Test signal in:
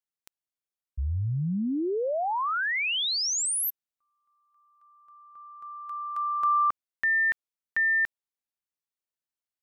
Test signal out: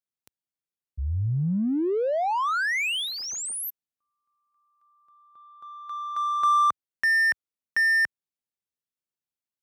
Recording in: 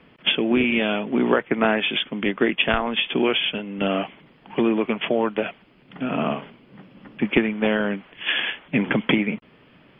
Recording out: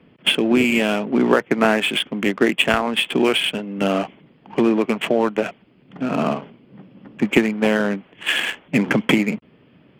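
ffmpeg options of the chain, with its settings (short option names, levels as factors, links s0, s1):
-filter_complex "[0:a]highpass=71,asplit=2[s0][s1];[s1]adynamicsmooth=sensitivity=4.5:basefreq=550,volume=1.33[s2];[s0][s2]amix=inputs=2:normalize=0,volume=0.631"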